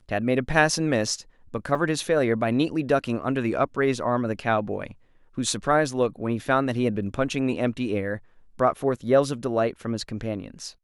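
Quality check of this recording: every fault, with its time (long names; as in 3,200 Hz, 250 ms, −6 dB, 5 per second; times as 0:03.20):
0:01.75: drop-out 3.3 ms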